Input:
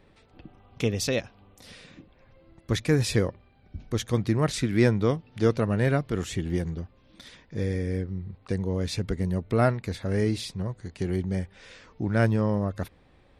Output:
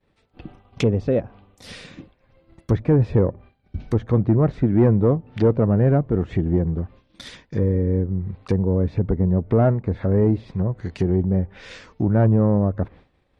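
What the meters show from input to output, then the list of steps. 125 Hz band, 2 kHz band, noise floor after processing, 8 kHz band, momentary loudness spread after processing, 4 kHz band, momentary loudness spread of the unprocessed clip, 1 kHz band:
+7.5 dB, −5.0 dB, −64 dBFS, below −10 dB, 13 LU, can't be measured, 11 LU, +2.5 dB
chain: harmonic generator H 5 −16 dB, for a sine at −9.5 dBFS
treble cut that deepens with the level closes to 790 Hz, closed at −22 dBFS
downward expander −42 dBFS
level +4 dB

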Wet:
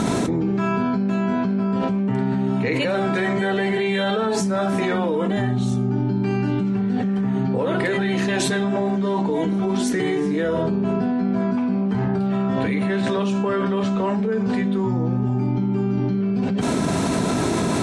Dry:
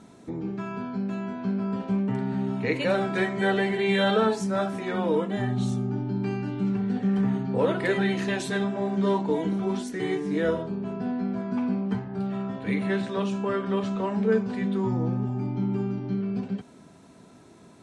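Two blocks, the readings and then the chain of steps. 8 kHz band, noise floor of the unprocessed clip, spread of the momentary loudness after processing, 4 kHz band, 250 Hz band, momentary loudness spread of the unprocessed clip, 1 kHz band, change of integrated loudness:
+12.5 dB, −51 dBFS, 1 LU, +5.5 dB, +6.5 dB, 7 LU, +6.0 dB, +5.5 dB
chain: envelope flattener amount 100%
level −2 dB

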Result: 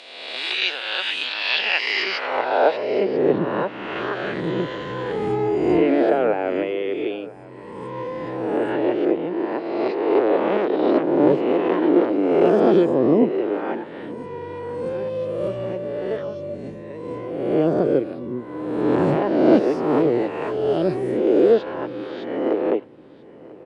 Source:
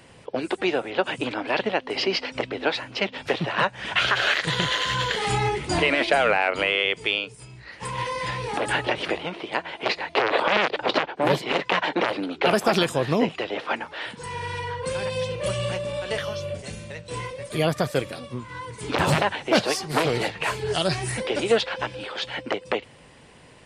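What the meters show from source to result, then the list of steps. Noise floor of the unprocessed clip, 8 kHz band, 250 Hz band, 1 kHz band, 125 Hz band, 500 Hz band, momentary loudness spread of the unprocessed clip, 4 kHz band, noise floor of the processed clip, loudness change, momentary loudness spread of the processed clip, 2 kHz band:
−49 dBFS, below −15 dB, +9.5 dB, −0.5 dB, −1.5 dB, +6.5 dB, 12 LU, −2.5 dB, −40 dBFS, +3.5 dB, 14 LU, −3.5 dB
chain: peak hold with a rise ahead of every peak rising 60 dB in 1.36 s
band-pass filter sweep 3,700 Hz → 330 Hz, 0:01.50–0:03.11
single-tap delay 990 ms −21 dB
level +9 dB

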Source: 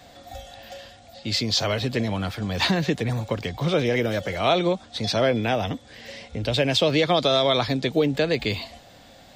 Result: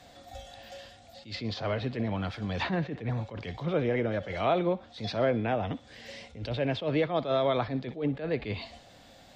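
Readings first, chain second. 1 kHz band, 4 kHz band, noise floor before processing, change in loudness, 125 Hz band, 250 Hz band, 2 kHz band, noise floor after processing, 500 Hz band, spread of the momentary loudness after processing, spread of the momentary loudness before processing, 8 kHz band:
−6.0 dB, −15.0 dB, −50 dBFS, −7.5 dB, −6.0 dB, −6.5 dB, −9.0 dB, −55 dBFS, −6.5 dB, 19 LU, 20 LU, below −15 dB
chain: treble cut that deepens with the level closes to 1,900 Hz, closed at −20 dBFS
feedback echo with a high-pass in the loop 62 ms, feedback 49%, high-pass 620 Hz, level −18 dB
level that may rise only so fast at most 160 dB per second
level −5 dB

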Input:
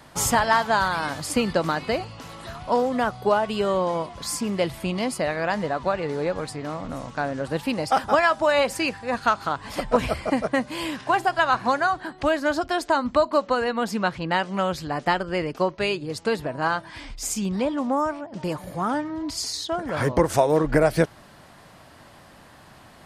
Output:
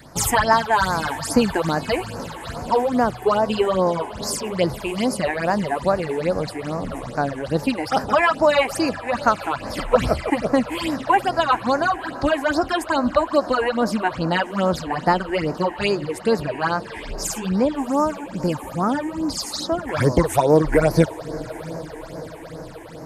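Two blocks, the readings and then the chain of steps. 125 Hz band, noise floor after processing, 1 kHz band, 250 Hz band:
+5.0 dB, −36 dBFS, +2.5 dB, +4.5 dB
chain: feedback delay with all-pass diffusion 690 ms, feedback 66%, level −16 dB
all-pass phaser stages 8, 2.4 Hz, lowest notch 160–3,300 Hz
level +5.5 dB

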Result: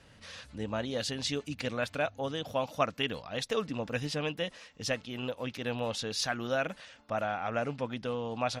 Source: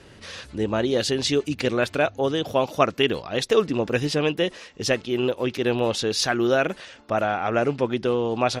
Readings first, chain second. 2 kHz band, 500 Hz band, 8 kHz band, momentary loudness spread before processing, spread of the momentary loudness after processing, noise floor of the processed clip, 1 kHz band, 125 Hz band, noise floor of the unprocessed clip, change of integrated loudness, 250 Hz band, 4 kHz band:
−8.5 dB, −12.0 dB, −8.5 dB, 6 LU, 6 LU, −58 dBFS, −9.0 dB, −8.5 dB, −48 dBFS, −10.5 dB, −12.0 dB, −8.5 dB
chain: parametric band 370 Hz −15 dB 0.32 octaves
level −8.5 dB

